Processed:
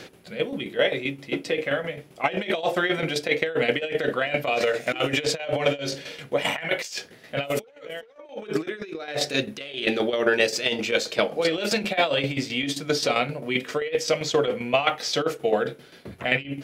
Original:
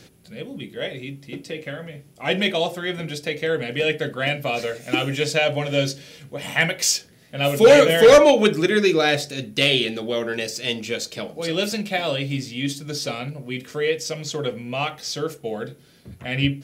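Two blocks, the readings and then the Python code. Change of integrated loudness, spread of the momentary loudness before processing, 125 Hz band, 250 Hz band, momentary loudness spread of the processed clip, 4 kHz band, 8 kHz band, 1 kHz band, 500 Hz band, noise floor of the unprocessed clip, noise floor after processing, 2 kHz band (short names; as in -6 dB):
-4.5 dB, 18 LU, -7.0 dB, -4.0 dB, 10 LU, -3.5 dB, -6.5 dB, -1.5 dB, -5.0 dB, -51 dBFS, -50 dBFS, -2.0 dB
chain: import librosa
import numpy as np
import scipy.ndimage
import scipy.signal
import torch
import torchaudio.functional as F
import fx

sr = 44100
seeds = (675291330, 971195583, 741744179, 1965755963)

y = fx.over_compress(x, sr, threshold_db=-26.0, ratio=-0.5)
y = fx.bass_treble(y, sr, bass_db=-13, treble_db=-7)
y = fx.tremolo_shape(y, sr, shape='saw_down', hz=7.6, depth_pct=65)
y = fx.high_shelf(y, sr, hz=5700.0, db=-4.5)
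y = F.gain(torch.from_numpy(y), 7.0).numpy()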